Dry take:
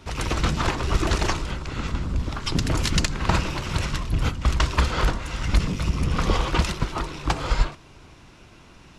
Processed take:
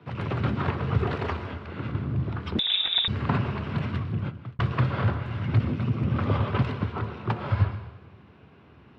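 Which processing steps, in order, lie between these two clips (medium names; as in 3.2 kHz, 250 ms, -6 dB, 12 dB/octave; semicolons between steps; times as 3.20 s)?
1.08–1.79 s: peaking EQ 63 Hz -14 dB 1.2 oct; frequency shift +62 Hz; distance through air 430 m; plate-style reverb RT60 0.86 s, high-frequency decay 1×, pre-delay 105 ms, DRR 10 dB; 2.59–3.08 s: frequency inversion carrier 3.7 kHz; 3.97–4.59 s: fade out; trim -3 dB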